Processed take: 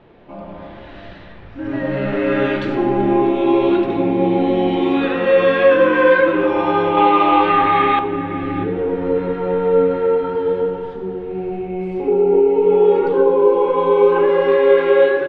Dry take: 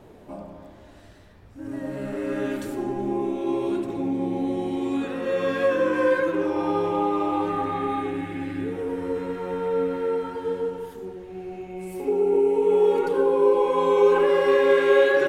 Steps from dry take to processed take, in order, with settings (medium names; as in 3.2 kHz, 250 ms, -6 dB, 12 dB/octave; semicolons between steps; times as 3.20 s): low-pass 3.7 kHz 24 dB/octave; peaking EQ 2.6 kHz +5.5 dB 2.7 oct, from 6.97 s +13 dB, from 7.99 s -4.5 dB; level rider gain up to 11.5 dB; echo from a far wall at 110 m, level -13 dB; reverberation, pre-delay 6 ms, DRR 10.5 dB; trim -1.5 dB